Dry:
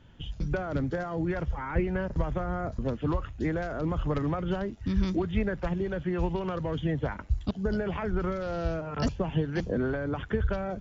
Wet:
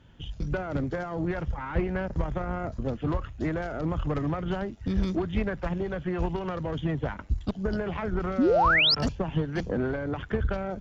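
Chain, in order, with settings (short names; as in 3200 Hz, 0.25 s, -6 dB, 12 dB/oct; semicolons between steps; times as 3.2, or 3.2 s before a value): added harmonics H 6 -22 dB, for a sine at -15 dBFS; painted sound rise, 8.38–8.95, 220–5500 Hz -21 dBFS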